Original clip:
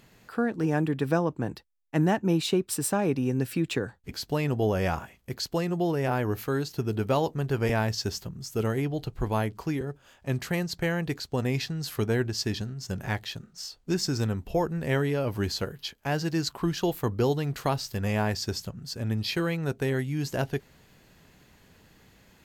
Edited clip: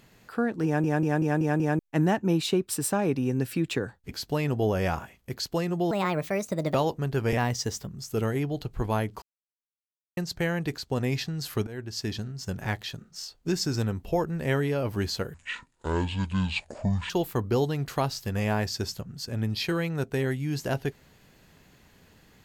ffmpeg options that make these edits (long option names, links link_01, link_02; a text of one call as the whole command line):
ffmpeg -i in.wav -filter_complex "[0:a]asplit=16[link_01][link_02][link_03][link_04][link_05][link_06][link_07][link_08][link_09][link_10][link_11][link_12][link_13][link_14][link_15][link_16];[link_01]atrim=end=0.842[link_17];[link_02]atrim=start=0.648:end=0.842[link_18];[link_03]atrim=start=0.648:end=0.842[link_19];[link_04]atrim=start=0.648:end=0.842[link_20];[link_05]atrim=start=0.648:end=0.842[link_21];[link_06]atrim=start=0.648:end=0.842[link_22];[link_07]atrim=start=1.788:end=5.914[link_23];[link_08]atrim=start=5.91:end=7.11,asetpts=PTS-STARTPTS,asetrate=63504,aresample=44100[link_24];[link_09]atrim=start=7.106:end=7.744[link_25];[link_10]atrim=start=7.74:end=8.32,asetpts=PTS-STARTPTS,asetrate=48510,aresample=44100[link_26];[link_11]atrim=start=8.316:end=9.64,asetpts=PTS-STARTPTS,afade=type=out:start_time=1.32:duration=0.004:curve=hsin[link_27];[link_12]atrim=start=9.64:end=10.59,asetpts=PTS-STARTPTS,volume=0[link_28];[link_13]atrim=start=10.59:end=12.09,asetpts=PTS-STARTPTS,afade=type=in:duration=0.004:curve=hsin,afade=type=out:start_time=1.496:duration=0.004:curve=hsin:silence=0.1[link_29];[link_14]atrim=start=12.09:end=15.764,asetpts=PTS-STARTPTS,afade=type=in:duration=0.73:curve=qsin:silence=0.1[link_30];[link_15]atrim=start=15.76:end=16.78,asetpts=PTS-STARTPTS,asetrate=25578,aresample=44100,atrim=end_sample=77555,asetpts=PTS-STARTPTS[link_31];[link_16]atrim=start=16.776[link_32];[link_17][link_18]acrossfade=duration=0.004:curve1=hsin:curve2=hsin[link_33];[link_33][link_19]acrossfade=duration=0.004:curve1=hsin:curve2=hsin[link_34];[link_34][link_20]acrossfade=duration=0.004:curve1=hsin:curve2=hsin[link_35];[link_35][link_21]acrossfade=duration=0.004:curve1=hsin:curve2=hsin[link_36];[link_36][link_22]acrossfade=duration=0.004:curve1=hsin:curve2=hsin[link_37];[link_37][link_23]acrossfade=duration=0.004:curve1=hsin:curve2=hsin[link_38];[link_38][link_24]acrossfade=duration=0.004:curve1=hsin:curve2=hsin[link_39];[link_39][link_25]acrossfade=duration=0.004:curve1=hsin:curve2=hsin[link_40];[link_40][link_26]acrossfade=duration=0.004:curve1=hsin:curve2=hsin[link_41];[link_27][link_28][link_29][link_30]concat=n=4:v=0:a=1[link_42];[link_41][link_42]acrossfade=duration=0.004:curve1=hsin:curve2=hsin[link_43];[link_43][link_31]acrossfade=duration=0.004:curve1=hsin:curve2=hsin[link_44];[link_44][link_32]acrossfade=duration=0.004:curve1=hsin:curve2=hsin" out.wav